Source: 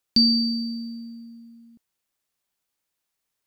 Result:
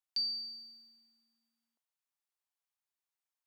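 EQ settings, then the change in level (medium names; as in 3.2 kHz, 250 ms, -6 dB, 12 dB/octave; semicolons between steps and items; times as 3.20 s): ladder high-pass 620 Hz, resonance 30%; -7.5 dB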